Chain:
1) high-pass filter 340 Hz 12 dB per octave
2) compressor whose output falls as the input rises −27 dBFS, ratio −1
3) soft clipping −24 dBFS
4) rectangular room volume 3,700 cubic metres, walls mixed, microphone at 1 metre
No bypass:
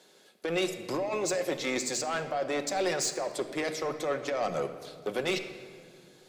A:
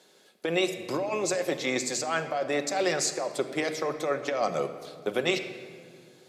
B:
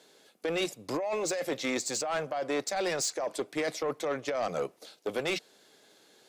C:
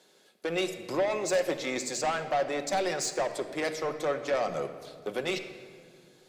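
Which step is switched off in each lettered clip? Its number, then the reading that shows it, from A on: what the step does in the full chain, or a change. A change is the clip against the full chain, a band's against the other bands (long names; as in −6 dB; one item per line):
3, distortion level −13 dB
4, echo-to-direct ratio −6.5 dB to none audible
2, change in momentary loudness spread +2 LU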